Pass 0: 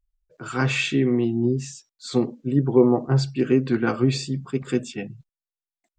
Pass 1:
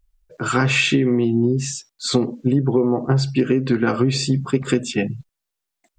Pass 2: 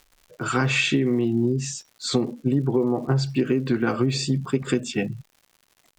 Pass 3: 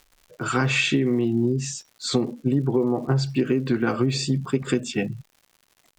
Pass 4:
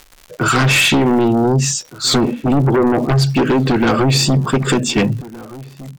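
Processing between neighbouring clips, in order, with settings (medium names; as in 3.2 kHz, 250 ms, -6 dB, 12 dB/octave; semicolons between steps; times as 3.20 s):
in parallel at 0 dB: peak limiter -12.5 dBFS, peak gain reduction 8 dB; on the sum: compression 10:1, threshold -19 dBFS, peak gain reduction 12.5 dB; trim +5.5 dB
crackle 180 per s -38 dBFS; trim -4 dB
no audible change
in parallel at -10 dB: sine folder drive 13 dB, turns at -8.5 dBFS; on the sum: echo from a far wall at 260 m, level -18 dB; trim +4 dB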